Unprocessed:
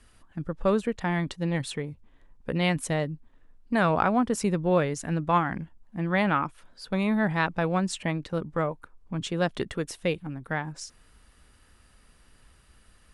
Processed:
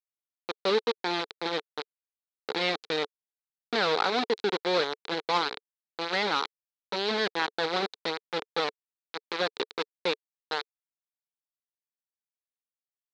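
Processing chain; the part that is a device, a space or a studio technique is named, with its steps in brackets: hand-held game console (bit-crush 4-bit; speaker cabinet 440–4300 Hz, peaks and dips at 440 Hz +7 dB, 630 Hz -9 dB, 1100 Hz -5 dB, 1800 Hz -4 dB, 2800 Hz -5 dB, 4000 Hz +8 dB)

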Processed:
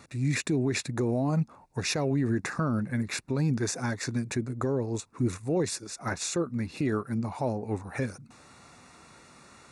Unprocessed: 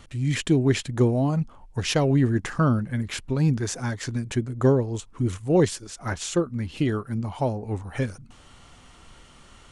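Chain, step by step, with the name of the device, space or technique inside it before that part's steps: PA system with an anti-feedback notch (HPF 130 Hz 12 dB/oct; Butterworth band-stop 3100 Hz, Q 4.2; limiter -18.5 dBFS, peak gain reduction 11.5 dB)

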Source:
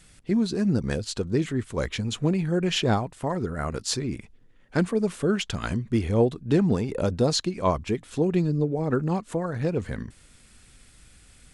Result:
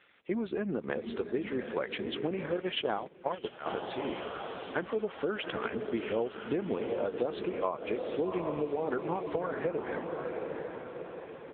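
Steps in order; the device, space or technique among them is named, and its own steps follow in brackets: high shelf 6200 Hz +3.5 dB; feedback echo 0.606 s, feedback 38%, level -20 dB; diffused feedback echo 0.765 s, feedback 50%, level -7.5 dB; 2.57–3.66 gate -24 dBFS, range -17 dB; voicemail (BPF 440–3100 Hz; compressor 10:1, threshold -30 dBFS, peak gain reduction 12.5 dB; gain +3 dB; AMR-NB 6.7 kbps 8000 Hz)

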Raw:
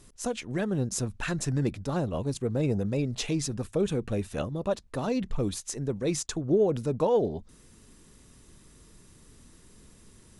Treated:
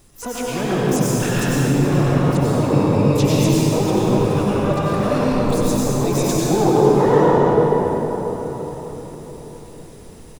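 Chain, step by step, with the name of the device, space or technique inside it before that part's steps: shimmer-style reverb (harmoniser +12 st -7 dB; reverb RT60 4.8 s, pre-delay 86 ms, DRR -8.5 dB); gain +2 dB

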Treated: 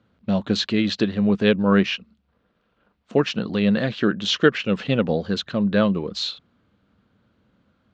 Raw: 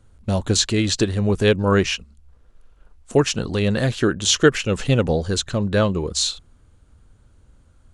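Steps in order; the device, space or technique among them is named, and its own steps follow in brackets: kitchen radio (speaker cabinet 180–4200 Hz, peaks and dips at 200 Hz +8 dB, 380 Hz -3 dB, 870 Hz -3 dB); gain -1 dB

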